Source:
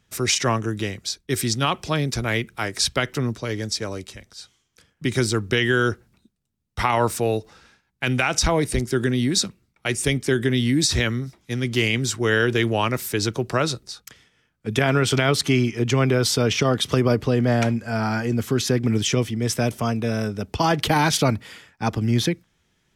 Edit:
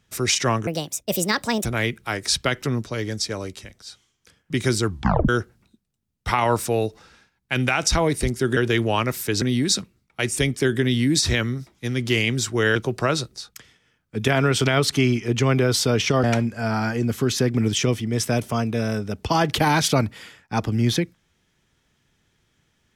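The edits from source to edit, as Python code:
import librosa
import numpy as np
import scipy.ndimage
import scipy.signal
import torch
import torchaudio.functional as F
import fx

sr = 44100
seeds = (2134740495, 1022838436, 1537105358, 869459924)

y = fx.edit(x, sr, fx.speed_span(start_s=0.67, length_s=1.5, speed=1.52),
    fx.tape_stop(start_s=5.38, length_s=0.42),
    fx.move(start_s=12.42, length_s=0.85, to_s=9.08),
    fx.cut(start_s=16.75, length_s=0.78), tone=tone)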